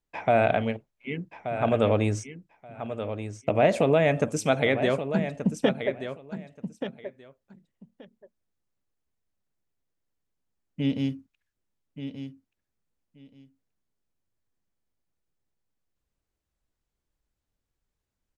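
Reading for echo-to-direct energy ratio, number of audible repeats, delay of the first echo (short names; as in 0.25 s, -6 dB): -10.0 dB, 2, 1.179 s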